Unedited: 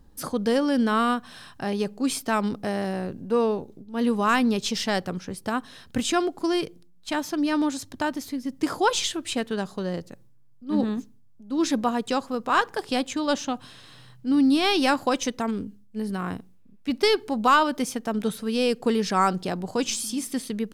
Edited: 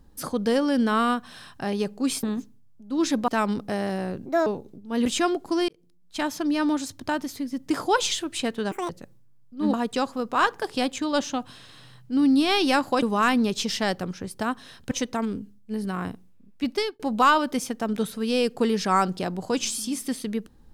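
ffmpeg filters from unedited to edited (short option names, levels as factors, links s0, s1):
-filter_complex "[0:a]asplit=13[s0][s1][s2][s3][s4][s5][s6][s7][s8][s9][s10][s11][s12];[s0]atrim=end=2.232[s13];[s1]atrim=start=10.828:end=11.882[s14];[s2]atrim=start=2.228:end=3.214[s15];[s3]atrim=start=3.21:end=3.5,asetpts=PTS-STARTPTS,asetrate=62622,aresample=44100,atrim=end_sample=9006,asetpts=PTS-STARTPTS[s16];[s4]atrim=start=3.496:end=4.092[s17];[s5]atrim=start=5.978:end=6.61,asetpts=PTS-STARTPTS,afade=t=out:st=0.628:d=0.004:c=hsin[s18];[s6]atrim=start=6.61:end=9.644,asetpts=PTS-STARTPTS,afade=t=in:d=0.52[s19];[s7]atrim=start=9.64:end=9.99,asetpts=PTS-STARTPTS,asetrate=85554,aresample=44100,atrim=end_sample=7956,asetpts=PTS-STARTPTS[s20];[s8]atrim=start=9.986:end=10.832[s21];[s9]atrim=start=11.878:end=15.172[s22];[s10]atrim=start=4.088:end=5.982[s23];[s11]atrim=start=15.168:end=17.25,asetpts=PTS-STARTPTS,afade=t=out:st=1.732:d=0.35[s24];[s12]atrim=start=17.25,asetpts=PTS-STARTPTS,afade=t=in:d=0.004:c=hsin[s25];[s13][s14]acrossfade=d=0.004:c1=hsin:c2=hsin[s26];[s26][s15]acrossfade=d=0.004:c1=hsin:c2=hsin[s27];[s27][s16]acrossfade=d=0.004:c1=hsin:c2=hsin[s28];[s28][s17]acrossfade=d=0.004:c1=hsin:c2=hsin[s29];[s18][s19]concat=n=2:v=0:a=1[s30];[s29][s30]acrossfade=d=0.004:c1=hsin:c2=hsin[s31];[s31][s20]acrossfade=d=0.004:c1=hsin:c2=hsin[s32];[s32][s21]acrossfade=d=0.004:c1=hsin:c2=hsin[s33];[s33][s22]acrossfade=d=0.004:c1=hsin:c2=hsin[s34];[s34][s23]acrossfade=d=0.004:c1=hsin:c2=hsin[s35];[s24][s25]concat=n=2:v=0:a=1[s36];[s35][s36]acrossfade=d=0.004:c1=hsin:c2=hsin"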